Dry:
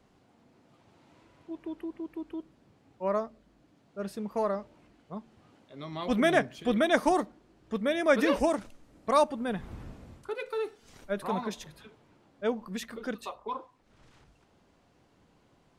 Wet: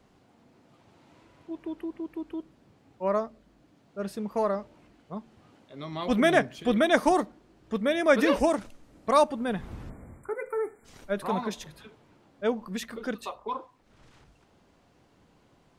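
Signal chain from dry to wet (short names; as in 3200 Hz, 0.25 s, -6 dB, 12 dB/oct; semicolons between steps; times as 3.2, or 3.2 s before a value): spectral delete 9.9–10.85, 2400–7100 Hz; gain +2.5 dB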